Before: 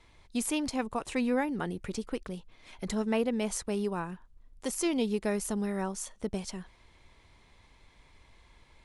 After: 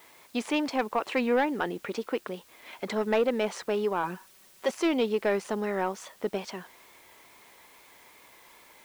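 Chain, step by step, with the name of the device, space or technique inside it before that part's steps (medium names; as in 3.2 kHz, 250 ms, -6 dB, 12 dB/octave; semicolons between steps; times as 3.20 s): tape answering machine (band-pass 370–3100 Hz; saturation -24.5 dBFS, distortion -18 dB; wow and flutter; white noise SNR 28 dB); 4.03–4.71 s: comb 5.3 ms, depth 74%; trim +8.5 dB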